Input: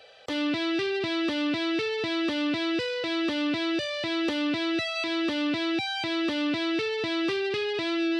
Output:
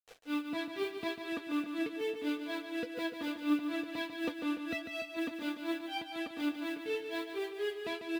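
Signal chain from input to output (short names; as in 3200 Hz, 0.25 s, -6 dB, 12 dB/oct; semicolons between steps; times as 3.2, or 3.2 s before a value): high shelf 3000 Hz -11.5 dB; comb 4.2 ms, depth 64%; in parallel at -1 dB: vocal rider within 3 dB 0.5 s; on the sum: bit-crush 7-bit; grains 0.21 s, grains 4.1/s, pitch spread up and down by 0 st; flange 0.8 Hz, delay 1.5 ms, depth 5.1 ms, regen +67%; on a send: feedback echo 0.146 s, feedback 54%, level -8 dB; on the sum: gain -5.5 dB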